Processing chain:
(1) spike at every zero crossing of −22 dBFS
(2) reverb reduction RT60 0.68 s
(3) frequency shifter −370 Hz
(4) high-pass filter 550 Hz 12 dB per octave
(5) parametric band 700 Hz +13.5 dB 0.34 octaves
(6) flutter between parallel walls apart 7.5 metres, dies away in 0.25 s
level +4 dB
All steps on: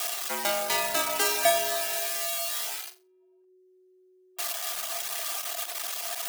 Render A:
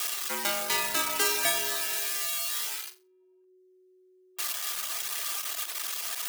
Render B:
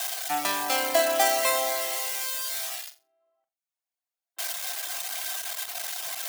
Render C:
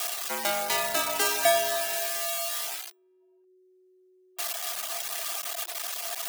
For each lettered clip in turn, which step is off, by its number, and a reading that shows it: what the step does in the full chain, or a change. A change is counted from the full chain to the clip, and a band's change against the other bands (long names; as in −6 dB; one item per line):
5, 500 Hz band −8.0 dB
3, 250 Hz band +2.5 dB
6, echo-to-direct ratio −10.0 dB to none audible